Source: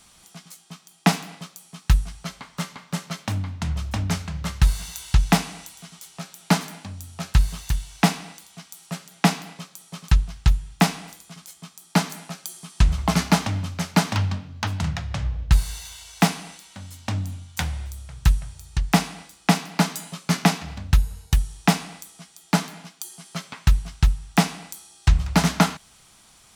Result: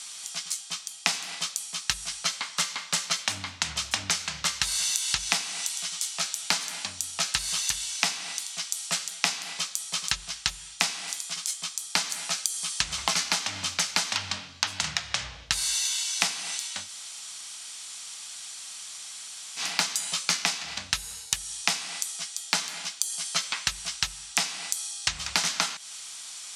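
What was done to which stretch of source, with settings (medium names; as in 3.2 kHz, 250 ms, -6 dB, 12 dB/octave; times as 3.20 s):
16.85–19.61 s: room tone, crossfade 0.10 s
whole clip: frequency weighting ITU-R 468; compression 12:1, threshold -26 dBFS; trim +3.5 dB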